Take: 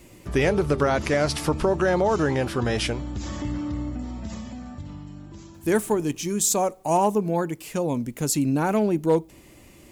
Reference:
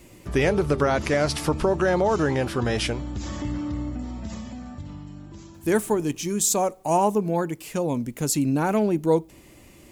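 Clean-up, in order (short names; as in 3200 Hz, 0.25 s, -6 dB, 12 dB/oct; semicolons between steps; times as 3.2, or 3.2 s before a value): clip repair -11.5 dBFS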